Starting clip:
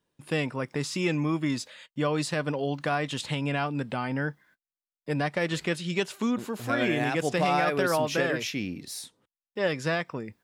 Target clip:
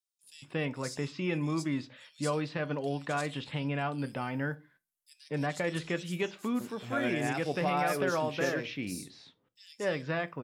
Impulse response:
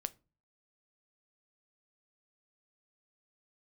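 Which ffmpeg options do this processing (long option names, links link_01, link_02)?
-filter_complex "[0:a]asettb=1/sr,asplit=3[link_01][link_02][link_03];[link_01]atrim=end=3.984[link_04];[link_02]atrim=start=3.98:end=5.1,asetpts=PTS-STARTPTS,afade=type=in:duration=0.004:curve=qsin,afade=type=out:start_time=1.116:duration=0.004:curve=qsin,equalizer=frequency=12000:width_type=o:width=1.7:gain=14[link_05];[link_03]atrim=start=5.096[link_06];[link_04][link_05]acrossfade=duration=0.004:curve1=hsin:curve2=qsin[link_07];[link_07][link_06]acrossfade=duration=0.004:curve1=qsin:curve2=hsin,acrossover=split=4100[link_08][link_09];[link_08]adelay=230[link_10];[link_10][link_09]amix=inputs=2:normalize=0[link_11];[1:a]atrim=start_sample=2205,afade=type=out:start_time=0.26:duration=0.01,atrim=end_sample=11907[link_12];[link_11][link_12]afir=irnorm=-1:irlink=0,volume=-3.5dB"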